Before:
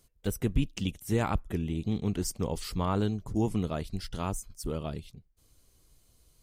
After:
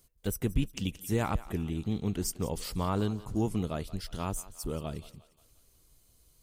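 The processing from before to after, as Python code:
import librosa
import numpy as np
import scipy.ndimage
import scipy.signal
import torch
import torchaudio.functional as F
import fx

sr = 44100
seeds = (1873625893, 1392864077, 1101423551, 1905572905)

p1 = fx.high_shelf(x, sr, hz=11000.0, db=8.0)
p2 = p1 + fx.echo_thinned(p1, sr, ms=177, feedback_pct=53, hz=430.0, wet_db=-16.5, dry=0)
y = p2 * 10.0 ** (-1.5 / 20.0)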